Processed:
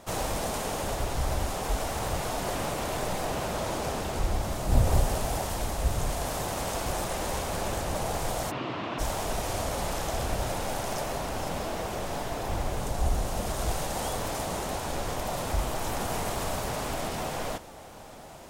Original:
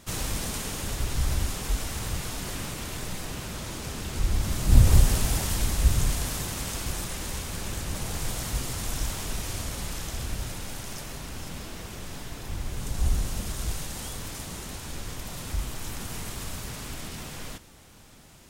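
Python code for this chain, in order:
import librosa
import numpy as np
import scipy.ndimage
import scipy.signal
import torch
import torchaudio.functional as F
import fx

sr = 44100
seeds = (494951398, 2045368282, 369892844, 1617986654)

y = fx.peak_eq(x, sr, hz=680.0, db=15.0, octaves=1.6)
y = fx.rider(y, sr, range_db=4, speed_s=0.5)
y = fx.cabinet(y, sr, low_hz=120.0, low_slope=24, high_hz=3600.0, hz=(310.0, 500.0, 780.0, 1100.0, 2700.0), db=(8, -5, -6, 4, 5), at=(8.5, 8.98), fade=0.02)
y = F.gain(torch.from_numpy(y), -3.0).numpy()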